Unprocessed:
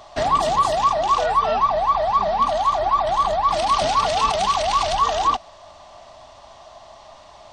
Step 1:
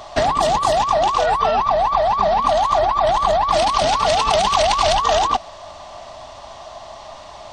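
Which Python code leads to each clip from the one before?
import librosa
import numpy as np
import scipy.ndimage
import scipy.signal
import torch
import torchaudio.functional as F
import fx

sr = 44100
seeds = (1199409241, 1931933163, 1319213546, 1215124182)

y = fx.over_compress(x, sr, threshold_db=-22.0, ratio=-1.0)
y = F.gain(torch.from_numpy(y), 5.0).numpy()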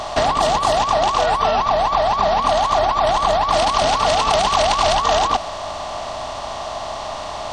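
y = fx.bin_compress(x, sr, power=0.6)
y = F.gain(torch.from_numpy(y), -2.5).numpy()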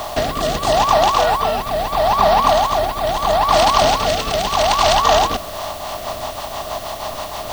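y = fx.rotary_switch(x, sr, hz=0.75, then_hz=6.3, switch_at_s=5.21)
y = fx.dmg_noise_colour(y, sr, seeds[0], colour='blue', level_db=-43.0)
y = F.gain(torch.from_numpy(y), 4.0).numpy()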